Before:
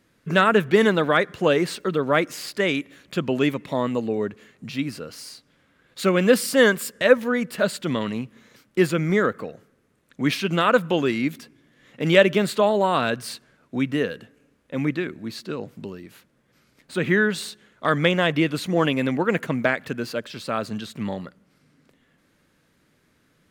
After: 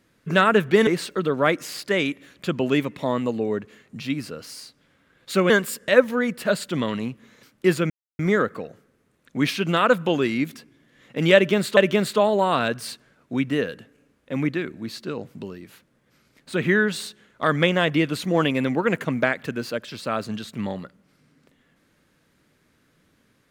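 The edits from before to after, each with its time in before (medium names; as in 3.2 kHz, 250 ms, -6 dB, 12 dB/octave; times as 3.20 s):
0.87–1.56 s: delete
6.19–6.63 s: delete
9.03 s: insert silence 0.29 s
12.19–12.61 s: loop, 2 plays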